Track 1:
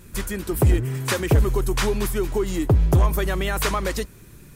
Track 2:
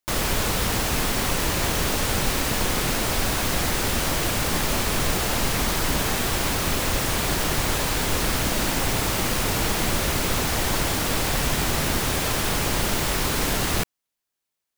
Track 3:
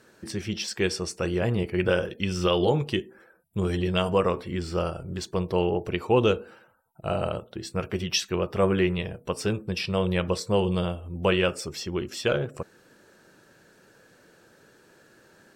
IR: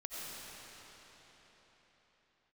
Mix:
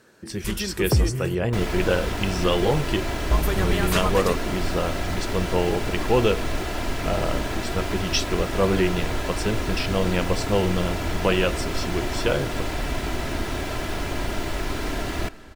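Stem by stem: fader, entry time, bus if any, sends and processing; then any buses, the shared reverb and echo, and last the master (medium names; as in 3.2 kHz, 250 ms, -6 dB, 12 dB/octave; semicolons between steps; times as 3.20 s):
-3.0 dB, 0.30 s, muted 1.35–3.31 s, send -15.5 dB, none
-3.5 dB, 1.45 s, send -16.5 dB, low-pass 2.1 kHz 6 dB/octave; peaking EQ 1.1 kHz -5 dB 0.27 oct; comb 3 ms, depth 46%
+1.0 dB, 0.00 s, no send, none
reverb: on, RT60 4.5 s, pre-delay 50 ms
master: none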